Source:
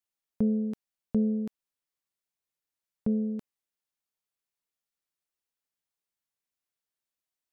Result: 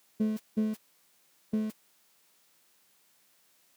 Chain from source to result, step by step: jump at every zero crossing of -34.5 dBFS; high-pass 130 Hz 24 dB/octave; gate -34 dBFS, range -18 dB; time stretch by phase-locked vocoder 0.5×; trim -3.5 dB

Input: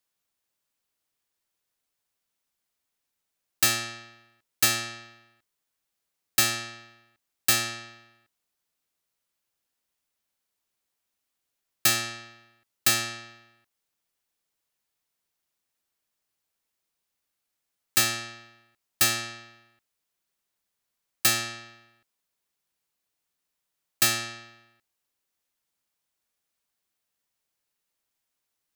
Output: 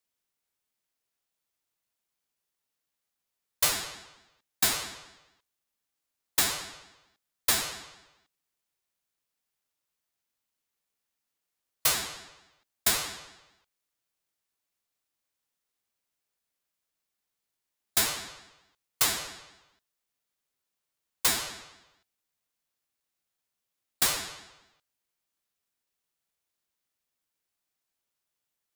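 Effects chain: formant shift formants +5 st; ring modulator with a swept carrier 1.4 kHz, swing 20%, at 4.5 Hz

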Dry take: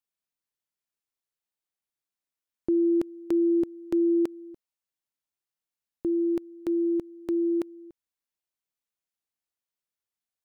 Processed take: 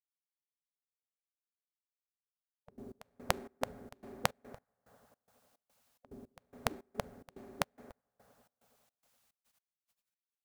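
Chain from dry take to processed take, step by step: reverberation RT60 3.6 s, pre-delay 4 ms, DRR 18.5 dB; spectral gate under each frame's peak -25 dB weak; trance gate "x.xx.xx.x..x" 108 bpm -24 dB; trim +16.5 dB

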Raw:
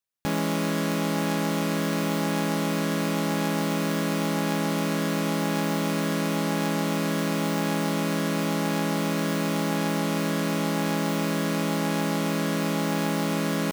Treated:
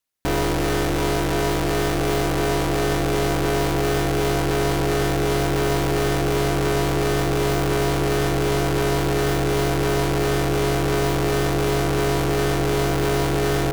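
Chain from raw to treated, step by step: feedback echo behind a band-pass 866 ms, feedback 75%, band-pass 580 Hz, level -9 dB; ring modulator 140 Hz; sine folder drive 4 dB, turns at -16 dBFS; trim +1.5 dB

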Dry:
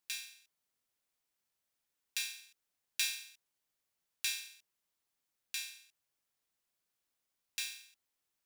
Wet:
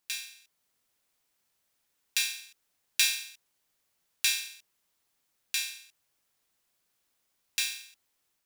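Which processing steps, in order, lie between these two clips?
level rider gain up to 4 dB; trim +5 dB

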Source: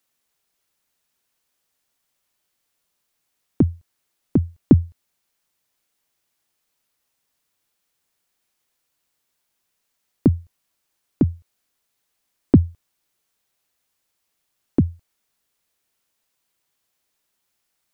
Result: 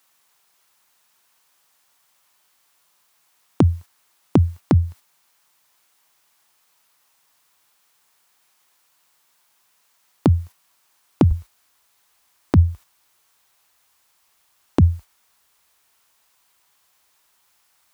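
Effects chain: high-pass 91 Hz 24 dB/octave, from 11.31 s 41 Hz; gate -41 dBFS, range -6 dB; graphic EQ 125/250/500/1000 Hz -5/-6/-4/+6 dB; compression 5:1, threshold -23 dBFS, peak gain reduction 9.5 dB; loudness maximiser +18 dB; trim -1 dB

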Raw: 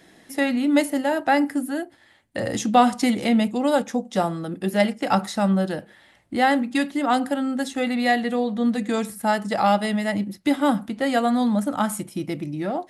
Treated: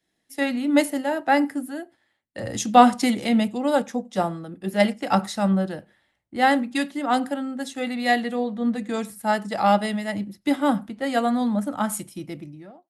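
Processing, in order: fade out at the end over 0.50 s; echo from a far wall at 16 m, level -30 dB; three bands expanded up and down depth 70%; trim -1.5 dB

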